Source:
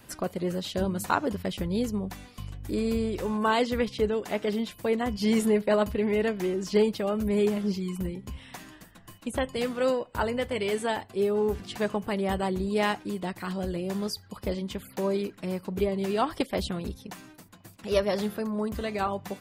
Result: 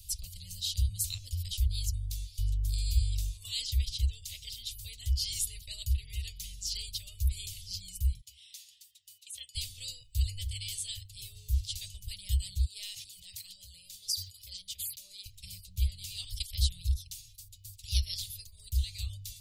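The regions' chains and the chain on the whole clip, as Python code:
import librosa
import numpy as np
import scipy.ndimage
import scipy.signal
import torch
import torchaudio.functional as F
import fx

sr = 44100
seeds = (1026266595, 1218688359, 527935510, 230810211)

y = fx.chain(x, sr, fx.highpass(hz=630.0, slope=12),
    fx.high_shelf(hz=4700.0, db=-7.0), at=(8.21, 9.55))
y = fx.chain(y, sr, fx.highpass(hz=460.0, slope=12),
    fx.tilt_shelf(db=5.5, hz=780.0),
    fx.sustainer(db_per_s=53.0), at=(12.65, 15.26))
y = scipy.signal.sosfilt(scipy.signal.cheby2(4, 50, [200.0, 1600.0], 'bandstop', fs=sr, output='sos'), y)
y = fx.low_shelf(y, sr, hz=150.0, db=7.0)
y = y * librosa.db_to_amplitude(6.0)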